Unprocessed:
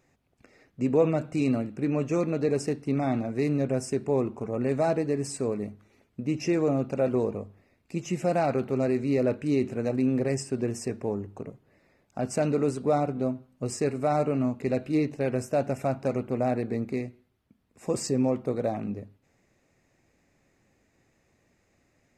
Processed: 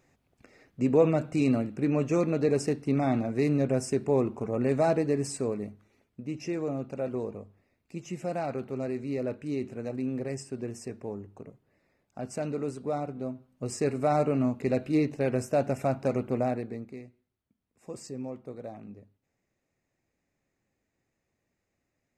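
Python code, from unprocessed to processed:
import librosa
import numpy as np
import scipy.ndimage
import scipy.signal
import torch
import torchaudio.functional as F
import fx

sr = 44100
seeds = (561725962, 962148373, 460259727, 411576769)

y = fx.gain(x, sr, db=fx.line((5.18, 0.5), (6.22, -7.0), (13.26, -7.0), (13.93, 0.0), (16.37, 0.0), (16.96, -12.5)))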